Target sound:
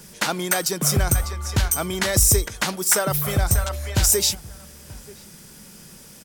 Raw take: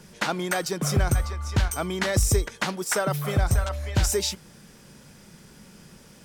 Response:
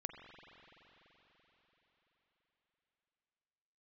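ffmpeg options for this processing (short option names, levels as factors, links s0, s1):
-filter_complex "[0:a]aemphasis=mode=production:type=50kf,asplit=2[s0][s1];[s1]adelay=932.9,volume=0.1,highshelf=f=4000:g=-21[s2];[s0][s2]amix=inputs=2:normalize=0,volume=1.19"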